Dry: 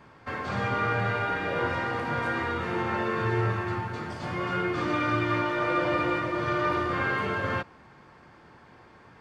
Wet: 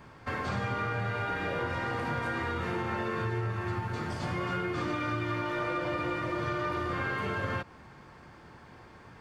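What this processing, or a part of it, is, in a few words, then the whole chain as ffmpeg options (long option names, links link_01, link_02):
ASMR close-microphone chain: -af "lowshelf=frequency=120:gain=7,acompressor=threshold=-29dB:ratio=6,highshelf=frequency=6800:gain=7.5"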